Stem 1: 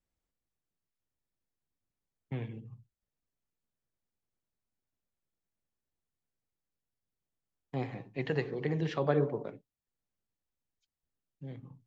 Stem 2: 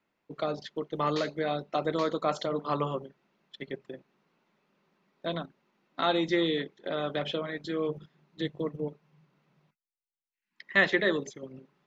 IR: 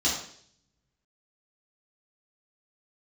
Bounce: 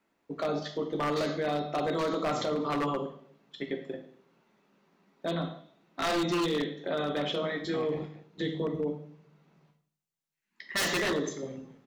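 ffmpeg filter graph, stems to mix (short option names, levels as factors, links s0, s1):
-filter_complex "[0:a]highpass=230,volume=1,asplit=3[s0][s1][s2];[s0]atrim=end=8.1,asetpts=PTS-STARTPTS,afade=t=out:st=8.096:d=0.004:c=hsin[s3];[s1]atrim=start=8.1:end=10.99,asetpts=PTS-STARTPTS,volume=0[s4];[s2]atrim=start=10.99,asetpts=PTS-STARTPTS,afade=t=in:d=0.004:c=hsin[s5];[s3][s4][s5]concat=n=3:v=0:a=1,asplit=2[s6][s7];[s7]volume=0.282[s8];[1:a]aeval=exprs='(mod(4.22*val(0)+1,2)-1)/4.22':c=same,volume=1.33,asplit=2[s9][s10];[s10]volume=0.178[s11];[2:a]atrim=start_sample=2205[s12];[s11][s12]afir=irnorm=-1:irlink=0[s13];[s8]aecho=0:1:213:1[s14];[s6][s9][s13][s14]amix=inputs=4:normalize=0,aeval=exprs='0.112*(abs(mod(val(0)/0.112+3,4)-2)-1)':c=same,alimiter=limit=0.0708:level=0:latency=1:release=17"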